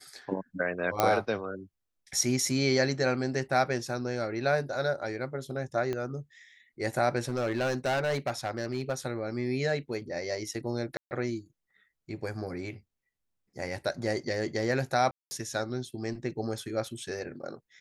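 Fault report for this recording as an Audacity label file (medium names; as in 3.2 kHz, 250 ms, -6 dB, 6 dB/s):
1.000000	1.000000	pop -9 dBFS
5.930000	5.930000	pop -20 dBFS
7.280000	8.940000	clipped -24.5 dBFS
10.970000	11.110000	dropout 139 ms
15.110000	15.310000	dropout 200 ms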